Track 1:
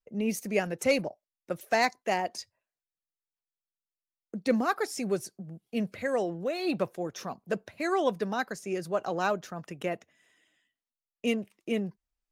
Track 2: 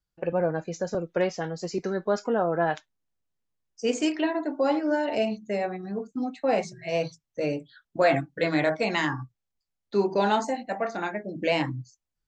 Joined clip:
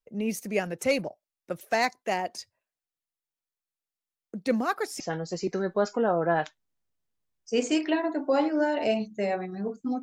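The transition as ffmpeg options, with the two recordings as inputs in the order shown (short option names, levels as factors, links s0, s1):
-filter_complex "[0:a]apad=whole_dur=10.02,atrim=end=10.02,atrim=end=5.002[s0];[1:a]atrim=start=1.308:end=6.33[s1];[s0][s1]acrossfade=d=0.004:c1=hsin:c2=hsin"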